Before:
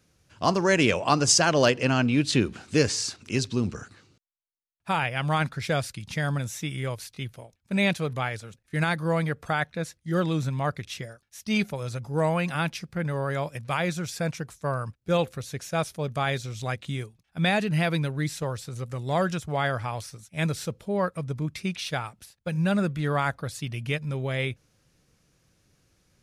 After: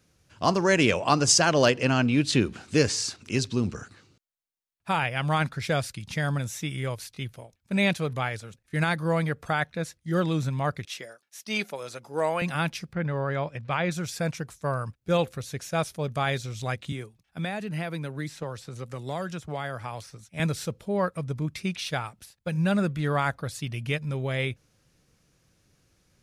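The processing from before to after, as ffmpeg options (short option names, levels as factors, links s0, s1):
-filter_complex "[0:a]asettb=1/sr,asplit=3[s0][s1][s2];[s0]atrim=end=10.854[s3];[s1]atrim=start=10.85:end=12.42,asetpts=PTS-STARTPTS,afade=t=in:d=0.004:c=qsin,afade=t=out:st=1.566:d=0.004:c=qsin,highpass=340[s4];[s2]atrim=start=12.416[s5];[s3][s4]acrossfade=d=0.004:c1=hsin:c2=qsin[s6];[s6][s5]acrossfade=d=0.004:c1=qsin:c2=hsin,asplit=3[s7][s8][s9];[s7]afade=t=out:st=12.92:d=0.02[s10];[s8]lowpass=3700,afade=t=in:st=12.92:d=0.02,afade=t=out:st=13.9:d=0.02[s11];[s9]afade=t=in:st=13.9:d=0.02[s12];[s10][s11][s12]amix=inputs=3:normalize=0,asettb=1/sr,asplit=3[s13][s14][s15];[s13]atrim=end=16.924[s16];[s14]atrim=start=16.92:end=20.4,asetpts=PTS-STARTPTS,afade=t=in:d=0.004:c=qsin,afade=t=out:st=3.476:d=0.004:c=qsin,acrossover=split=170|2300|6900[s17][s18][s19][s20];[s17]acompressor=threshold=0.00631:ratio=3[s21];[s18]acompressor=threshold=0.0251:ratio=3[s22];[s19]acompressor=threshold=0.00355:ratio=3[s23];[s20]acompressor=threshold=0.00126:ratio=3[s24];[s21][s22][s23][s24]amix=inputs=4:normalize=0[s25];[s15]atrim=start=20.396[s26];[s16][s25]acrossfade=d=0.004:c1=hsin:c2=qsin[s27];[s27][s26]acrossfade=d=0.004:c1=qsin:c2=hsin"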